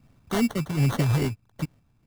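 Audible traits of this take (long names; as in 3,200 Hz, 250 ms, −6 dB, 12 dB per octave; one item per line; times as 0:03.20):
sample-and-hold tremolo 3.9 Hz, depth 65%
phaser sweep stages 6, 2.5 Hz, lowest notch 490–1,500 Hz
aliases and images of a low sample rate 2,500 Hz, jitter 0%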